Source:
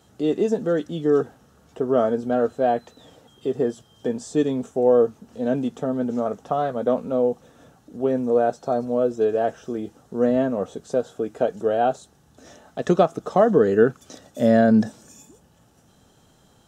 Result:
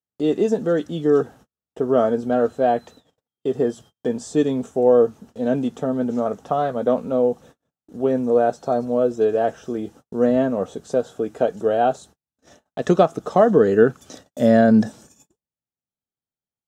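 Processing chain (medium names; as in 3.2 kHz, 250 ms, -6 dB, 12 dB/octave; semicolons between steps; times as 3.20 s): gate -45 dBFS, range -44 dB; trim +2 dB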